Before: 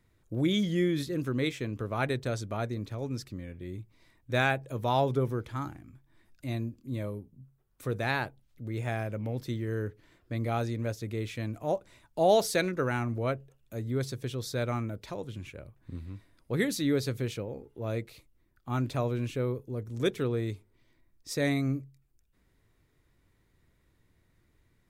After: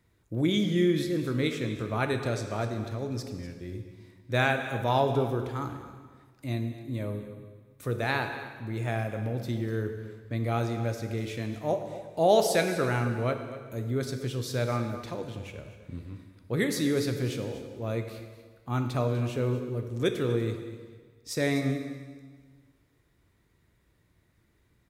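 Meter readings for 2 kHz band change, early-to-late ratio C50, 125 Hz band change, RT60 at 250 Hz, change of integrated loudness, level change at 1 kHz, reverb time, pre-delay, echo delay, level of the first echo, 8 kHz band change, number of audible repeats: +2.0 dB, 7.0 dB, +2.0 dB, 1.6 s, +2.0 dB, +2.0 dB, 1.6 s, 7 ms, 245 ms, -15.0 dB, +2.0 dB, 1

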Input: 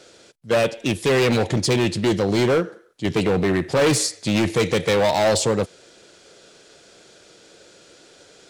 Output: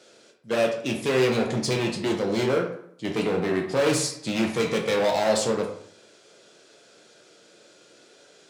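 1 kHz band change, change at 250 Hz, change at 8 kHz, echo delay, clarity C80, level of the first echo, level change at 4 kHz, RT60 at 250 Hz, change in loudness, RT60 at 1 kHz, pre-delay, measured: -4.0 dB, -5.0 dB, -5.5 dB, no echo, 10.0 dB, no echo, -5.0 dB, 0.70 s, -4.5 dB, 0.65 s, 12 ms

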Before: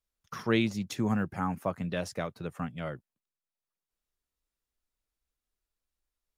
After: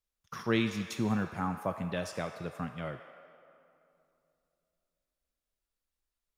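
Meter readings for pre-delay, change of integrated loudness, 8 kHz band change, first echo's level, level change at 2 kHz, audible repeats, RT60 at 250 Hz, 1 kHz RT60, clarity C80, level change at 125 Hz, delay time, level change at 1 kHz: 20 ms, -2.0 dB, -1.0 dB, no echo, -1.0 dB, no echo, 3.2 s, 2.6 s, 8.5 dB, -2.0 dB, no echo, -1.0 dB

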